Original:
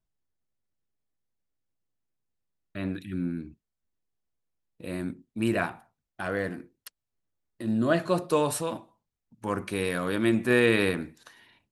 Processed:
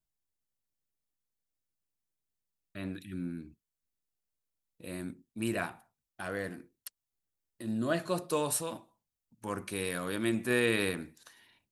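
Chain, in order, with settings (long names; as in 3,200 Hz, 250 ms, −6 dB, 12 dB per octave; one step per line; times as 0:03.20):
high-shelf EQ 4,800 Hz +10.5 dB
level −7 dB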